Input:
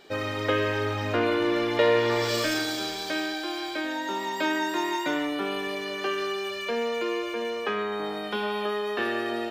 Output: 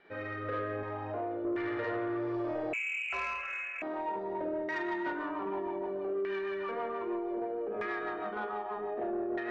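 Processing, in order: 8.24–8.7 HPF 170 Hz -> 740 Hz 24 dB/oct; Schroeder reverb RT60 0.61 s, combs from 33 ms, DRR -3.5 dB; rotary speaker horn 0.6 Hz, later 6.3 Hz, at 3.76; echo with dull and thin repeats by turns 0.761 s, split 1600 Hz, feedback 52%, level -8 dB; LFO low-pass saw down 0.64 Hz 530–2000 Hz; compressor 3:1, threshold -22 dBFS, peak gain reduction 8 dB; 0.83–1.45 tilt shelf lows -5.5 dB, about 1300 Hz; 2.73–3.82 inverted band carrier 2900 Hz; soft clip -17.5 dBFS, distortion -22 dB; gain -8.5 dB

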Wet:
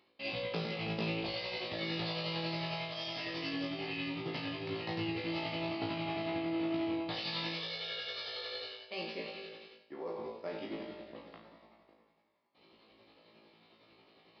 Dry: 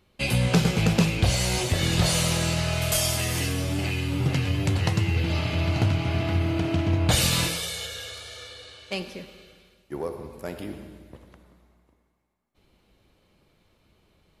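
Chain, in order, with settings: HPF 280 Hz 12 dB/oct; notch 1500 Hz, Q 6.9; reverse; compressor 4:1, threshold -43 dBFS, peak gain reduction 19.5 dB; reverse; tremolo 11 Hz, depth 49%; on a send: flutter echo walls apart 3.1 m, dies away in 0.39 s; on the sum: downsampling 11025 Hz; gain +3.5 dB

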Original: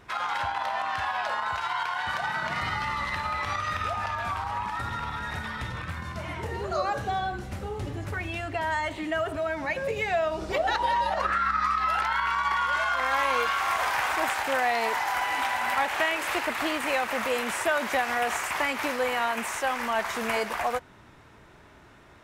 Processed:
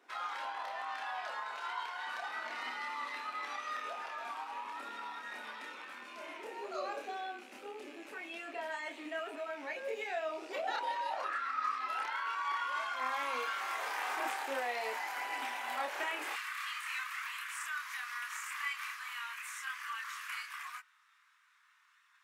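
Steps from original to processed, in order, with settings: rattling part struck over -46 dBFS, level -32 dBFS; Chebyshev high-pass 250 Hz, order 5, from 16.32 s 1100 Hz; chorus voices 4, 0.22 Hz, delay 28 ms, depth 1.3 ms; gain -7 dB

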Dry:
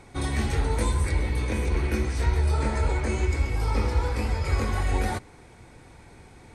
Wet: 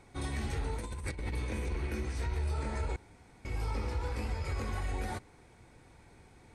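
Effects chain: rattling part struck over -24 dBFS, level -35 dBFS; 0.77–1.35 negative-ratio compressor -27 dBFS, ratio -0.5; limiter -17.5 dBFS, peak gain reduction 5.5 dB; 2.96–3.45 room tone; gain -8.5 dB

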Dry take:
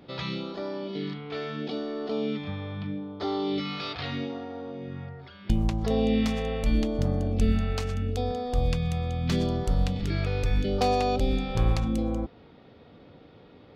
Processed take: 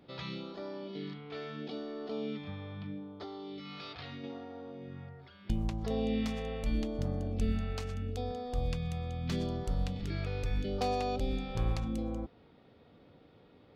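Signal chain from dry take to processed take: 3.07–4.24 compressor, threshold -33 dBFS, peak gain reduction 7.5 dB; gain -8 dB

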